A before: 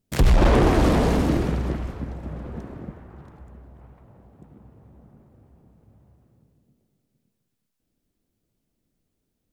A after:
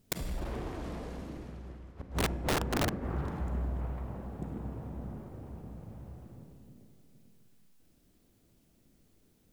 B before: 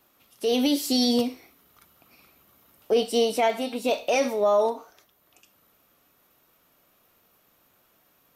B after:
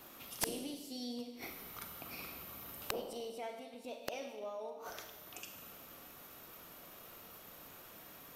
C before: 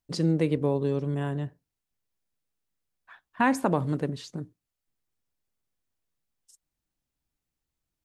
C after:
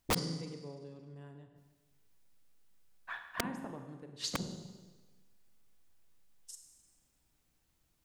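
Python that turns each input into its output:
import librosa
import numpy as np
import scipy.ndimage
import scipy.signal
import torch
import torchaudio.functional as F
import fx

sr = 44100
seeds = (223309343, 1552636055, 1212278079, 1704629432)

y = fx.gate_flip(x, sr, shuts_db=-24.0, range_db=-31)
y = fx.rev_schroeder(y, sr, rt60_s=1.3, comb_ms=33, drr_db=6.0)
y = (np.mod(10.0 ** (31.5 / 20.0) * y + 1.0, 2.0) - 1.0) / 10.0 ** (31.5 / 20.0)
y = y * 10.0 ** (8.5 / 20.0)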